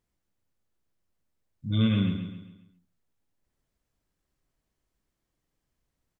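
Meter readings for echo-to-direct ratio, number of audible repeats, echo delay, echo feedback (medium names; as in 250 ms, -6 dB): -7.0 dB, 4, 135 ms, 43%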